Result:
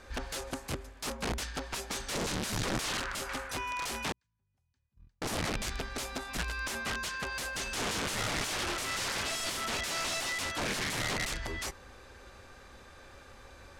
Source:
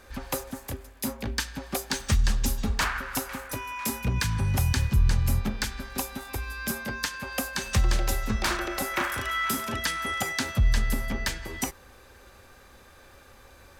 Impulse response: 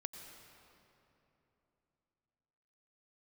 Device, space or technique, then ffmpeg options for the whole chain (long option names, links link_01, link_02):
overflowing digital effects unit: -filter_complex "[0:a]asettb=1/sr,asplit=3[link_01][link_02][link_03];[link_01]atrim=end=4.124[link_04];[link_02]atrim=start=4.12:end=5.22,asetpts=PTS-STARTPTS,afade=type=in:duration=0.004:curve=qsin,afade=type=out:start_time=1.096:duration=0.004:curve=qsin,agate=range=-55dB:threshold=-13dB:ratio=16:detection=peak[link_05];[link_03]atrim=start=5.216[link_06];[link_04][link_05]acrossfade=duration=0.004:curve1=hsin:curve2=qsin[link_07];[link_07][link_06]acrossfade=duration=0.004:curve1=qsin:curve2=hsin,aeval=exprs='(mod(23.7*val(0)+1,2)-1)/23.7':channel_layout=same,lowpass=8100"